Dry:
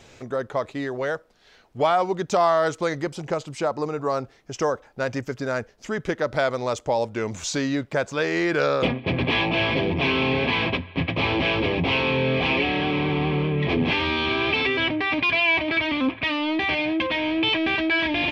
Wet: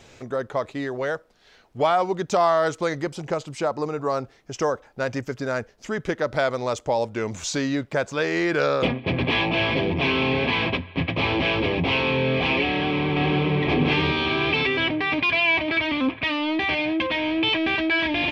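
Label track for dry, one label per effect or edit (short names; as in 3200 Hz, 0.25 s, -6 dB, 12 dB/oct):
12.640000	13.600000	echo throw 0.52 s, feedback 40%, level -3 dB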